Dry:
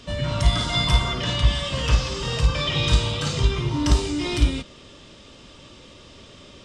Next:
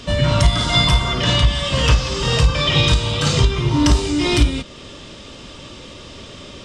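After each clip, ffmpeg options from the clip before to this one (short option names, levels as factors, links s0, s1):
-af "alimiter=limit=0.224:level=0:latency=1:release=409,volume=2.82"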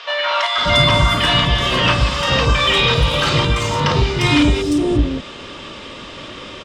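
-filter_complex "[0:a]asplit=2[s0][s1];[s1]highpass=f=720:p=1,volume=4.47,asoftclip=type=tanh:threshold=0.668[s2];[s0][s2]amix=inputs=2:normalize=0,lowpass=f=1900:p=1,volume=0.501,acrossover=split=640|5600[s3][s4][s5];[s5]adelay=350[s6];[s3]adelay=580[s7];[s7][s4][s6]amix=inputs=3:normalize=0,volume=1.41"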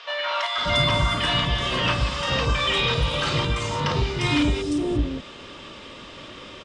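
-af "aresample=22050,aresample=44100,volume=0.422"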